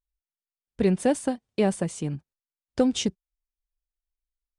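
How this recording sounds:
background noise floor −96 dBFS
spectral slope −5.5 dB per octave

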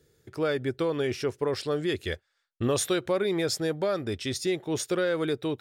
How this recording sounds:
background noise floor −76 dBFS
spectral slope −4.5 dB per octave

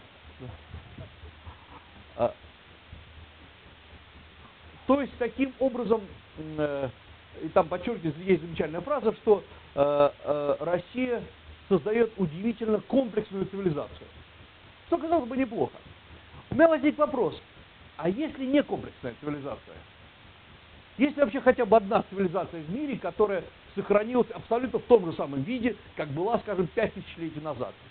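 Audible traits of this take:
chopped level 4.1 Hz, depth 60%, duty 30%
a quantiser's noise floor 8 bits, dither triangular
mu-law

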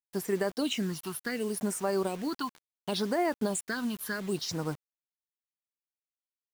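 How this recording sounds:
phaser sweep stages 6, 0.7 Hz, lowest notch 530–3,500 Hz
a quantiser's noise floor 8 bits, dither none

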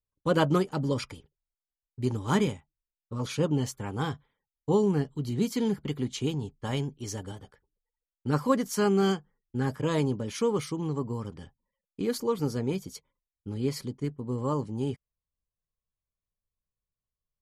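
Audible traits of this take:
background noise floor −94 dBFS
spectral slope −6.5 dB per octave

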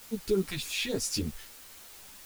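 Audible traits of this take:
phaser sweep stages 2, 3.4 Hz, lowest notch 290–3,000 Hz
a quantiser's noise floor 8 bits, dither triangular
a shimmering, thickened sound

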